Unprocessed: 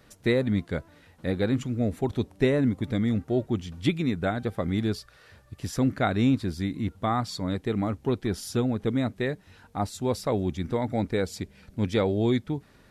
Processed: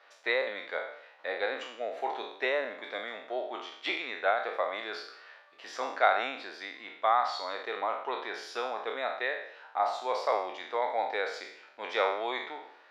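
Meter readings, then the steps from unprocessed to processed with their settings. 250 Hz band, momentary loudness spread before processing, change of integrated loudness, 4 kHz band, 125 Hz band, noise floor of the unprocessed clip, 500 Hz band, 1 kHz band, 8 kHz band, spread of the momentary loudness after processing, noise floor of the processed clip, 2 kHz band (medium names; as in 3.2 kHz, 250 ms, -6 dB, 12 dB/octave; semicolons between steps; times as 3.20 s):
-23.0 dB, 9 LU, -4.5 dB, 0.0 dB, under -40 dB, -57 dBFS, -4.0 dB, +4.5 dB, under -10 dB, 14 LU, -58 dBFS, +4.0 dB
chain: spectral sustain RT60 0.67 s; high-pass 630 Hz 24 dB/octave; distance through air 240 m; trim +3.5 dB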